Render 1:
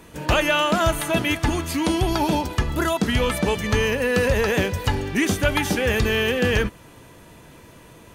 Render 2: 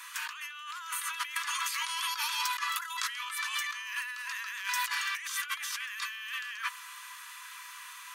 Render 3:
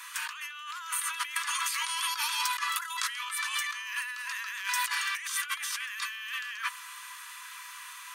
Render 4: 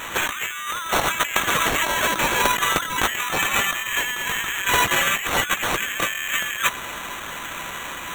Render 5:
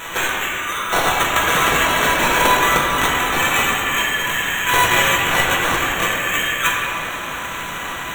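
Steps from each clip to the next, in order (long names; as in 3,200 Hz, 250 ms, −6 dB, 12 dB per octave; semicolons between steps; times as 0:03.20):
Chebyshev high-pass filter 1,000 Hz, order 8; compressor whose output falls as the input rises −37 dBFS, ratio −1
dynamic equaliser 9,000 Hz, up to +6 dB, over −57 dBFS, Q 5; level +1.5 dB
in parallel at −2 dB: speech leveller within 3 dB 2 s; on the sum: sample-rate reduction 4,900 Hz, jitter 0%; level +6 dB
convolution reverb RT60 3.3 s, pre-delay 6 ms, DRR −3.5 dB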